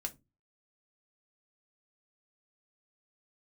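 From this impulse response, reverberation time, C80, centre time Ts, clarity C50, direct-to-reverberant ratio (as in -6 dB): 0.25 s, 30.5 dB, 5 ms, 20.0 dB, 3.5 dB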